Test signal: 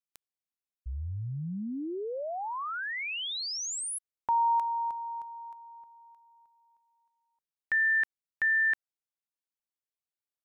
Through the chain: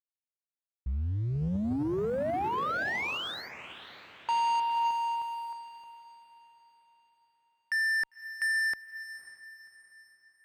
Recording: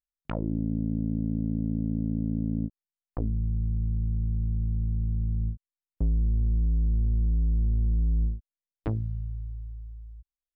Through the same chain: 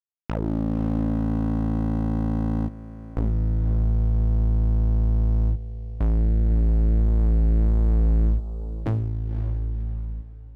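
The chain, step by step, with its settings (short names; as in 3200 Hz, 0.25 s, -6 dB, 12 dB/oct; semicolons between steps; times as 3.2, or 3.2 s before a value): air absorption 460 m; expander -48 dBFS; sample leveller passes 3; diffused feedback echo 0.54 s, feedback 45%, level -11.5 dB; added harmonics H 7 -24 dB, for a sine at -14.5 dBFS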